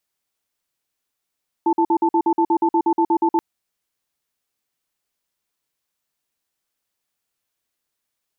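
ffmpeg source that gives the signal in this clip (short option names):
-f lavfi -i "aevalsrc='0.15*(sin(2*PI*334*t)+sin(2*PI*882*t))*clip(min(mod(t,0.12),0.07-mod(t,0.12))/0.005,0,1)':d=1.73:s=44100"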